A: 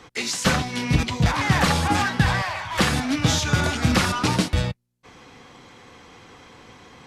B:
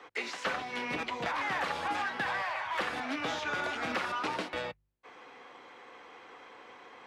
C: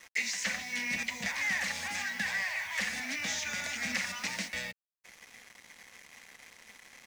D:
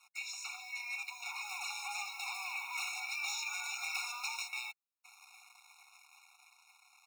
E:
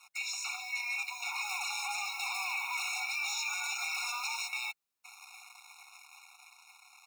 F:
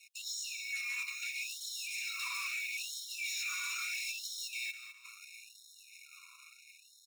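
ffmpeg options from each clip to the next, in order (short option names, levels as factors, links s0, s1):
-filter_complex "[0:a]acrossover=split=340 3000:gain=0.0708 1 0.2[s0][s1][s2];[s0][s1][s2]amix=inputs=3:normalize=0,bandreject=f=50.08:t=h:w=4,bandreject=f=100.16:t=h:w=4,bandreject=f=150.24:t=h:w=4,acrossover=split=150|2700|6200[s3][s4][s5][s6];[s3]acompressor=threshold=0.002:ratio=4[s7];[s4]acompressor=threshold=0.0316:ratio=4[s8];[s5]acompressor=threshold=0.00794:ratio=4[s9];[s6]acompressor=threshold=0.00126:ratio=4[s10];[s7][s8][s9][s10]amix=inputs=4:normalize=0,volume=0.794"
-af "firequalizer=gain_entry='entry(100,0);entry(140,-11);entry(200,7);entry(340,-22);entry(550,-9);entry(1300,-13);entry(1900,7);entry(3100,-1);entry(6200,15);entry(10000,9)':delay=0.05:min_phase=1,acrusher=bits=7:mix=0:aa=0.5"
-filter_complex "[0:a]dynaudnorm=f=230:g=13:m=2,asplit=2[s0][s1];[s1]aeval=exprs='(mod(10.6*val(0)+1,2)-1)/10.6':c=same,volume=0.251[s2];[s0][s2]amix=inputs=2:normalize=0,afftfilt=real='re*eq(mod(floor(b*sr/1024/720),2),1)':imag='im*eq(mod(floor(b*sr/1024/720),2),1)':win_size=1024:overlap=0.75,volume=0.422"
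-af "alimiter=level_in=2.82:limit=0.0631:level=0:latency=1:release=23,volume=0.355,volume=2.11"
-af "volume=56.2,asoftclip=hard,volume=0.0178,aecho=1:1:207|414|621|828:0.282|0.101|0.0365|0.0131,afftfilt=real='re*gte(b*sr/1024,950*pow(3000/950,0.5+0.5*sin(2*PI*0.75*pts/sr)))':imag='im*gte(b*sr/1024,950*pow(3000/950,0.5+0.5*sin(2*PI*0.75*pts/sr)))':win_size=1024:overlap=0.75"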